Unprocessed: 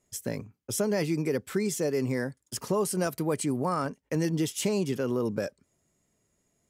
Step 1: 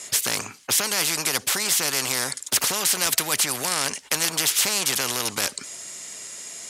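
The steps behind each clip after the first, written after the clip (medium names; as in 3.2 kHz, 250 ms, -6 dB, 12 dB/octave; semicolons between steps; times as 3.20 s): frequency weighting ITU-R 468; spectrum-flattening compressor 4:1; trim +3.5 dB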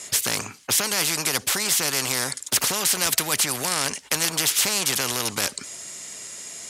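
bass shelf 210 Hz +4.5 dB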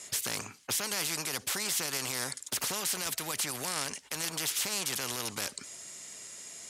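peak limiter -11.5 dBFS, peak gain reduction 6.5 dB; trim -8.5 dB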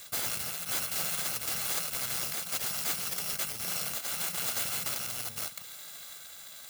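bit-reversed sample order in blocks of 128 samples; reverse echo 517 ms -3 dB; trim -1 dB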